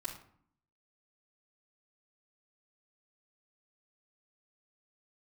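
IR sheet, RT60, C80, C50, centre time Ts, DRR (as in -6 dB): 0.60 s, 12.0 dB, 8.0 dB, 19 ms, -8.5 dB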